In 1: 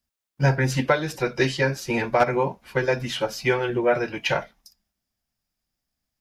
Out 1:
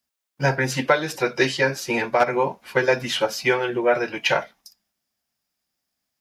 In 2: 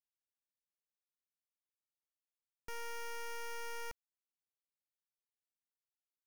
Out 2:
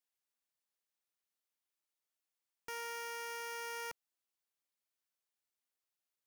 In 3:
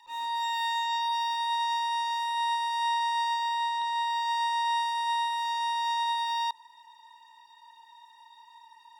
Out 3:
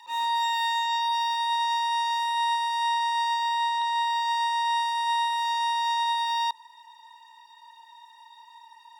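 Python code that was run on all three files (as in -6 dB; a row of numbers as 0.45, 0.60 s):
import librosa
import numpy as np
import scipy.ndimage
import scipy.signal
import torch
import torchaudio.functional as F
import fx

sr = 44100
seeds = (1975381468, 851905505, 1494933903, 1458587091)

y = fx.highpass(x, sr, hz=320.0, slope=6)
y = fx.rider(y, sr, range_db=10, speed_s=0.5)
y = y * 10.0 ** (3.5 / 20.0)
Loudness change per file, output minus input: +1.5, +2.5, +3.0 LU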